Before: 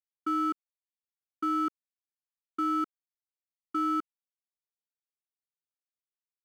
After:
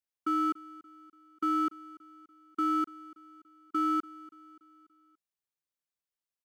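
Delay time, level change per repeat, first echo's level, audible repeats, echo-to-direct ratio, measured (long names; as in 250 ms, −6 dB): 288 ms, −6.0 dB, −20.0 dB, 3, −18.5 dB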